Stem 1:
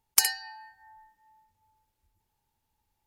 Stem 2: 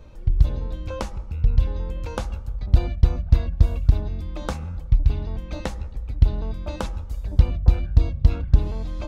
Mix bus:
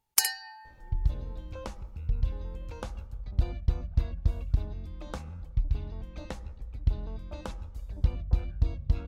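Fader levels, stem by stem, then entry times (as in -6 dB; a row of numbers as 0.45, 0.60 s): -2.0, -10.0 dB; 0.00, 0.65 s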